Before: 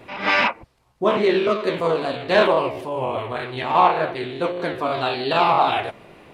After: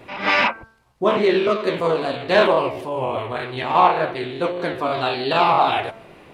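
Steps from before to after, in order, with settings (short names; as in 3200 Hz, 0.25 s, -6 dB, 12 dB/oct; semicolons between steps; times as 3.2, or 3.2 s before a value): de-hum 223.8 Hz, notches 7; gain +1 dB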